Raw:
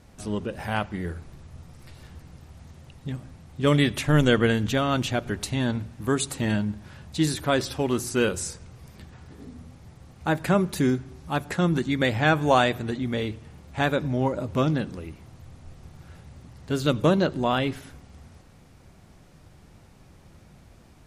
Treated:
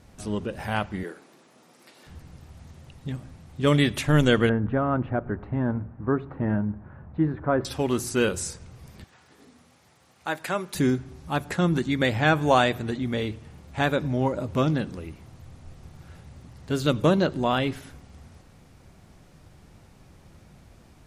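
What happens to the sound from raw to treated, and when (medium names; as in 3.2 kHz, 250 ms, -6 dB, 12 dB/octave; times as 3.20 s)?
1.03–2.07 s: high-pass 250 Hz 24 dB/octave
4.49–7.65 s: low-pass 1.5 kHz 24 dB/octave
9.04–10.75 s: high-pass 880 Hz 6 dB/octave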